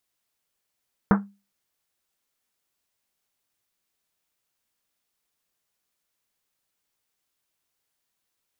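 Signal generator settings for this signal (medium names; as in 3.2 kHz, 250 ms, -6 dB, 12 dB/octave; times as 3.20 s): Risset drum, pitch 200 Hz, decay 0.30 s, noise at 1.1 kHz, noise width 960 Hz, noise 30%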